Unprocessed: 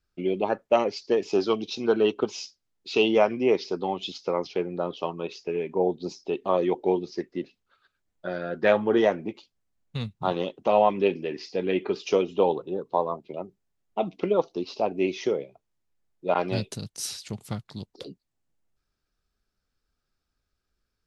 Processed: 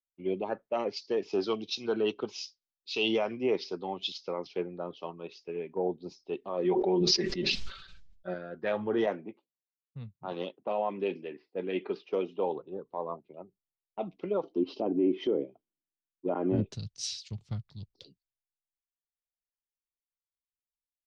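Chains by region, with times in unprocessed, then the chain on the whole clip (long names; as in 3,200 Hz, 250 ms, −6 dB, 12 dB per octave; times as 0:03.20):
0:06.64–0:08.34: comb filter 5.2 ms, depth 69% + level that may fall only so fast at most 35 dB per second
0:09.06–0:12.56: low-pass that shuts in the quiet parts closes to 510 Hz, open at −19.5 dBFS + high-pass filter 160 Hz
0:14.43–0:16.66: treble cut that deepens with the level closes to 1,700 Hz, closed at −24 dBFS + hollow resonant body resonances 290/3,100 Hz, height 16 dB, ringing for 25 ms
whole clip: low-pass filter 5,700 Hz 24 dB per octave; brickwall limiter −16 dBFS; multiband upward and downward expander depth 100%; level −5 dB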